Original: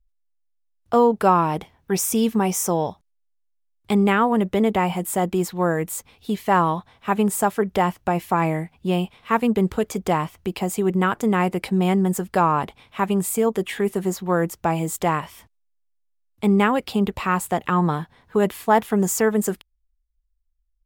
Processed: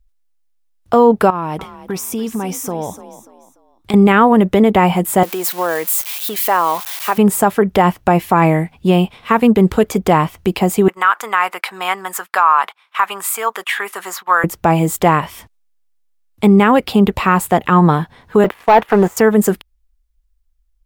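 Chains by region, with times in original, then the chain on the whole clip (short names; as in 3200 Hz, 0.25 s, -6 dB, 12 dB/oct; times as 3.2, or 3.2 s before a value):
1.3–3.94 compressor 4:1, threshold -30 dBFS + frequency-shifting echo 0.293 s, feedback 35%, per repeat +39 Hz, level -14.5 dB
5.23–7.18 switching spikes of -23.5 dBFS + compressor 2.5:1, threshold -20 dBFS + HPF 520 Hz
10.88–14.44 resonant high-pass 1200 Hz, resonance Q 2.1 + gate -46 dBFS, range -15 dB
18.44–19.17 de-esser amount 85% + three-band isolator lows -12 dB, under 440 Hz, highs -13 dB, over 2900 Hz + sample leveller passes 2
whole clip: dynamic EQ 7200 Hz, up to -5 dB, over -44 dBFS, Q 0.72; maximiser +11 dB; gain -1 dB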